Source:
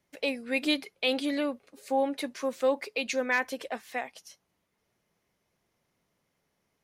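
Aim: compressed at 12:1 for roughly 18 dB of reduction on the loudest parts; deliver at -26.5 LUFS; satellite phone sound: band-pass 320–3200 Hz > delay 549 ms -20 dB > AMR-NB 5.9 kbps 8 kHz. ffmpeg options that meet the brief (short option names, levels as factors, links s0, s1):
-af "acompressor=threshold=0.01:ratio=12,highpass=320,lowpass=3200,aecho=1:1:549:0.1,volume=11.9" -ar 8000 -c:a libopencore_amrnb -b:a 5900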